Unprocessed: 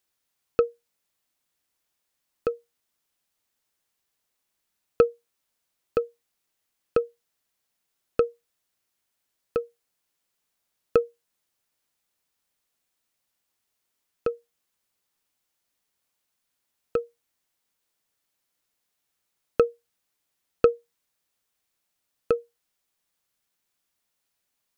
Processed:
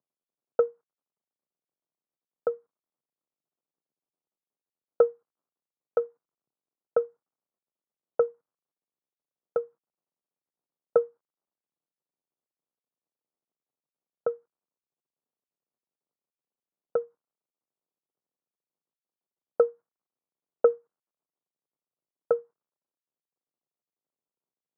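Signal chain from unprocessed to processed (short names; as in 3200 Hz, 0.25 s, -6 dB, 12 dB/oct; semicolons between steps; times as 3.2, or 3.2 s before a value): CVSD 32 kbps; elliptic band-pass 130–1300 Hz, stop band 40 dB; low-pass opened by the level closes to 740 Hz, open at -24 dBFS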